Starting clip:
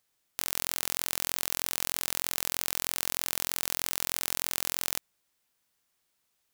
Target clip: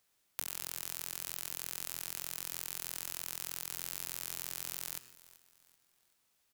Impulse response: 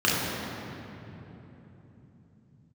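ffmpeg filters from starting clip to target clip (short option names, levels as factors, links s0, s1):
-filter_complex "[0:a]asplit=2[s0][s1];[s1]asetrate=33038,aresample=44100,atempo=1.33484,volume=0.316[s2];[s0][s2]amix=inputs=2:normalize=0,acrossover=split=220|5000[s3][s4][s5];[s3]acompressor=threshold=0.001:ratio=4[s6];[s4]acompressor=threshold=0.00447:ratio=4[s7];[s5]acompressor=threshold=0.0178:ratio=4[s8];[s6][s7][s8]amix=inputs=3:normalize=0,aecho=1:1:383|766|1149:0.112|0.0438|0.0171,asplit=2[s9][s10];[1:a]atrim=start_sample=2205,atrim=end_sample=3969,adelay=87[s11];[s10][s11]afir=irnorm=-1:irlink=0,volume=0.0376[s12];[s9][s12]amix=inputs=2:normalize=0"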